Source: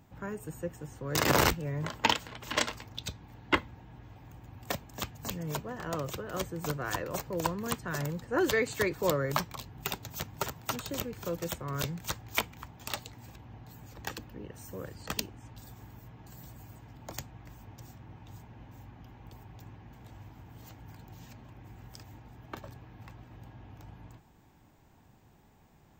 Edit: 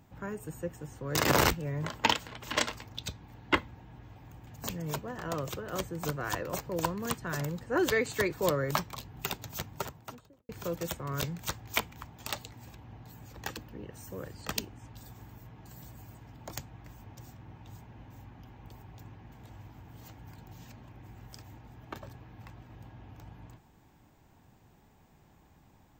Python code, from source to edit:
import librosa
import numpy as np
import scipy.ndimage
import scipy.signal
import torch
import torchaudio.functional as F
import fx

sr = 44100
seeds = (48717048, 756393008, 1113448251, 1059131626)

y = fx.studio_fade_out(x, sr, start_s=10.17, length_s=0.93)
y = fx.edit(y, sr, fx.cut(start_s=4.47, length_s=0.61), tone=tone)